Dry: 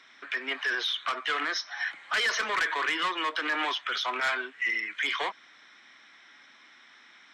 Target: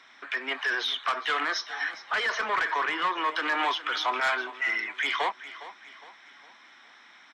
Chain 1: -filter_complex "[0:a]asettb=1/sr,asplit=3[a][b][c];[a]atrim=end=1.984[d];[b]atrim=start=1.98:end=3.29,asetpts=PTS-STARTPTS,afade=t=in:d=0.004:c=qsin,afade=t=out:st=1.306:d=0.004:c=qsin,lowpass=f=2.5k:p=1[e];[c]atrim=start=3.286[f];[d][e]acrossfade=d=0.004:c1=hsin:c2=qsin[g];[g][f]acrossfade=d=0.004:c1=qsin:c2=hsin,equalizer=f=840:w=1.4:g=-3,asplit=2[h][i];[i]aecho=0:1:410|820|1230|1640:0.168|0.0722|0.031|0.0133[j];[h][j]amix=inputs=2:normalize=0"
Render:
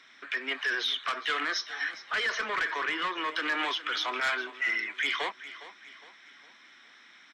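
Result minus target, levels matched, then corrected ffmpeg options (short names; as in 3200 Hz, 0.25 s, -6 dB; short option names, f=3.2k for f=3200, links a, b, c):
1000 Hz band -3.5 dB
-filter_complex "[0:a]asettb=1/sr,asplit=3[a][b][c];[a]atrim=end=1.984[d];[b]atrim=start=1.98:end=3.29,asetpts=PTS-STARTPTS,afade=t=in:d=0.004:c=qsin,afade=t=out:st=1.306:d=0.004:c=qsin,lowpass=f=2.5k:p=1[e];[c]atrim=start=3.286[f];[d][e]acrossfade=d=0.004:c1=hsin:c2=qsin[g];[g][f]acrossfade=d=0.004:c1=qsin:c2=hsin,equalizer=f=840:w=1.4:g=6,asplit=2[h][i];[i]aecho=0:1:410|820|1230|1640:0.168|0.0722|0.031|0.0133[j];[h][j]amix=inputs=2:normalize=0"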